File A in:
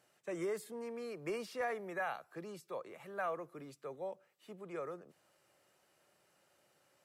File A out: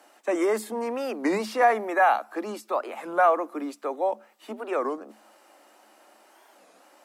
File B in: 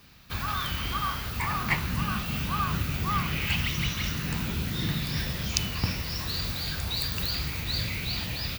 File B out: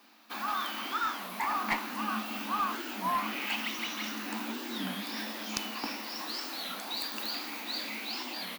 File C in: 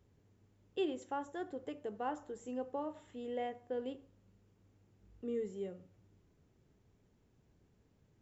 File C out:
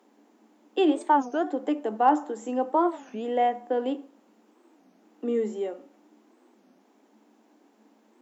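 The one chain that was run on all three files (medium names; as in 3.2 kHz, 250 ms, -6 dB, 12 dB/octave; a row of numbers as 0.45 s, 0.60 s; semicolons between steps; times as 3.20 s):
rippled Chebyshev high-pass 210 Hz, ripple 9 dB; one-sided clip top -29 dBFS; warped record 33 1/3 rpm, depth 250 cents; peak normalisation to -9 dBFS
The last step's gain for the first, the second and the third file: +22.0 dB, +4.0 dB, +20.0 dB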